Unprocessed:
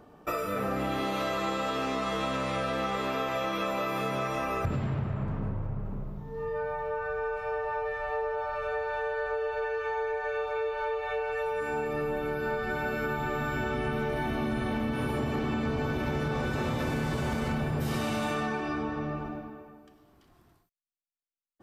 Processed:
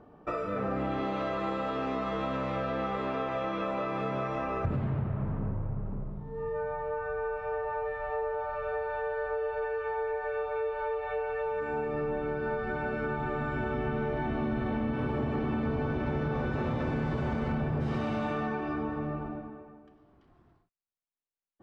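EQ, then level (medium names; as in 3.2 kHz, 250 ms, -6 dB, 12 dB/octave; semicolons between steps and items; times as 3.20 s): distance through air 110 m; treble shelf 2.8 kHz -11.5 dB; 0.0 dB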